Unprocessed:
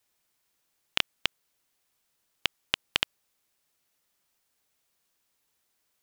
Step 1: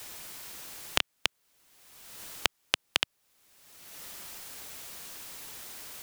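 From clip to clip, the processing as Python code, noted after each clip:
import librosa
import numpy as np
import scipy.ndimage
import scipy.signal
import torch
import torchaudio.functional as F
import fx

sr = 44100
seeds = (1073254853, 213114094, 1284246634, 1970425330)

y = fx.band_squash(x, sr, depth_pct=100)
y = F.gain(torch.from_numpy(y), 1.5).numpy()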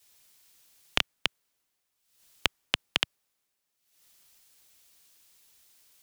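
y = fx.band_widen(x, sr, depth_pct=100)
y = F.gain(torch.from_numpy(y), -7.0).numpy()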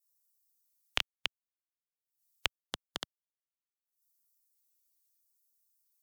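y = fx.bin_expand(x, sr, power=1.5)
y = fx.filter_lfo_notch(y, sr, shape='square', hz=0.77, low_hz=250.0, high_hz=2500.0, q=0.94)
y = F.gain(torch.from_numpy(y), -4.5).numpy()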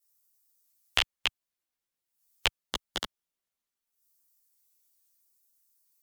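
y = fx.chorus_voices(x, sr, voices=6, hz=1.2, base_ms=14, depth_ms=3.0, mix_pct=50)
y = F.gain(torch.from_numpy(y), 9.0).numpy()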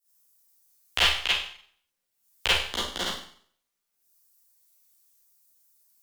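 y = fx.rev_schroeder(x, sr, rt60_s=0.54, comb_ms=32, drr_db=-9.0)
y = F.gain(torch.from_numpy(y), -3.0).numpy()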